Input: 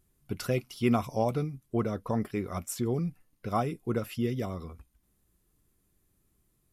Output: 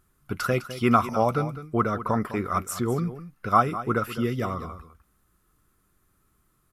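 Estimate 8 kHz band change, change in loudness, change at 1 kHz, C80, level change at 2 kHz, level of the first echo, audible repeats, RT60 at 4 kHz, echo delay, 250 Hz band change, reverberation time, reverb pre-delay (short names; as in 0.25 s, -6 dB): +3.5 dB, +6.0 dB, +11.0 dB, none, +10.0 dB, -13.5 dB, 1, none, 0.205 s, +3.5 dB, none, none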